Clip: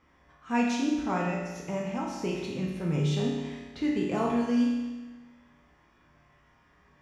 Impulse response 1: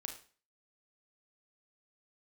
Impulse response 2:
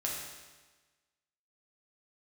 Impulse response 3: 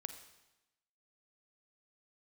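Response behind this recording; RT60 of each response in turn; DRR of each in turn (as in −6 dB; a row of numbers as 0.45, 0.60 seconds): 2; 0.40, 1.3, 1.0 seconds; 3.5, −3.5, 8.0 decibels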